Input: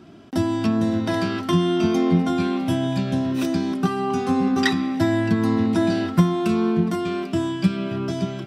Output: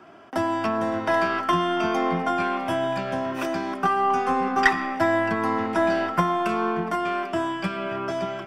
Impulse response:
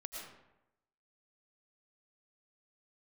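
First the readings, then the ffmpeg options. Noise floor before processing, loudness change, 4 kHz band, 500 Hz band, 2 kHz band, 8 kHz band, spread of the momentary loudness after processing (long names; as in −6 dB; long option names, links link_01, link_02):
−31 dBFS, −2.5 dB, −3.5 dB, 0.0 dB, +5.0 dB, −5.0 dB, 6 LU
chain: -filter_complex "[0:a]acrossover=split=530 2100:gain=0.1 1 0.224[link_01][link_02][link_03];[link_01][link_02][link_03]amix=inputs=3:normalize=0,aeval=exprs='0.251*(cos(1*acos(clip(val(0)/0.251,-1,1)))-cos(1*PI/2))+0.0251*(cos(2*acos(clip(val(0)/0.251,-1,1)))-cos(2*PI/2))':channel_layout=same,bandreject=frequency=3900:width=5.9,asplit=2[link_04][link_05];[1:a]atrim=start_sample=2205,afade=type=out:start_time=0.32:duration=0.01,atrim=end_sample=14553[link_06];[link_05][link_06]afir=irnorm=-1:irlink=0,volume=-10.5dB[link_07];[link_04][link_07]amix=inputs=2:normalize=0,volume=6.5dB"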